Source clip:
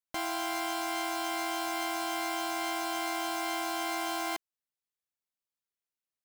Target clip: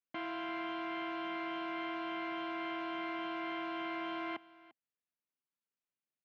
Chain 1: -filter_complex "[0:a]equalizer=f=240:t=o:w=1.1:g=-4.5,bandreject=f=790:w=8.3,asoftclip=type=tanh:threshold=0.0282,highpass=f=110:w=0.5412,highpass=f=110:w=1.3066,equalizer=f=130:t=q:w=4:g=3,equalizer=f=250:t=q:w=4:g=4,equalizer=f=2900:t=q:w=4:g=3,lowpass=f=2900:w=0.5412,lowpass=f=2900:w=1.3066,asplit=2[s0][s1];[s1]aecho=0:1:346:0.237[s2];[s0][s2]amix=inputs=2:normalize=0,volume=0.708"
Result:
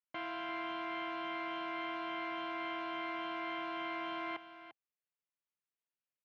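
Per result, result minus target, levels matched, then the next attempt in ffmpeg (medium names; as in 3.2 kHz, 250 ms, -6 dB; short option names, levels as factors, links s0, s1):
echo-to-direct +7.5 dB; 250 Hz band -3.0 dB
-filter_complex "[0:a]equalizer=f=240:t=o:w=1.1:g=-4.5,bandreject=f=790:w=8.3,asoftclip=type=tanh:threshold=0.0282,highpass=f=110:w=0.5412,highpass=f=110:w=1.3066,equalizer=f=130:t=q:w=4:g=3,equalizer=f=250:t=q:w=4:g=4,equalizer=f=2900:t=q:w=4:g=3,lowpass=f=2900:w=0.5412,lowpass=f=2900:w=1.3066,asplit=2[s0][s1];[s1]aecho=0:1:346:0.1[s2];[s0][s2]amix=inputs=2:normalize=0,volume=0.708"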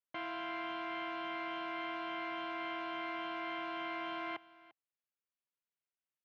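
250 Hz band -3.5 dB
-filter_complex "[0:a]equalizer=f=240:t=o:w=1.1:g=3.5,bandreject=f=790:w=8.3,asoftclip=type=tanh:threshold=0.0282,highpass=f=110:w=0.5412,highpass=f=110:w=1.3066,equalizer=f=130:t=q:w=4:g=3,equalizer=f=250:t=q:w=4:g=4,equalizer=f=2900:t=q:w=4:g=3,lowpass=f=2900:w=0.5412,lowpass=f=2900:w=1.3066,asplit=2[s0][s1];[s1]aecho=0:1:346:0.1[s2];[s0][s2]amix=inputs=2:normalize=0,volume=0.708"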